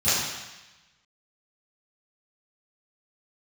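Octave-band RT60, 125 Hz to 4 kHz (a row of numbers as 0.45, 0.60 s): 1.1, 1.0, 1.0, 1.1, 1.2, 1.2 s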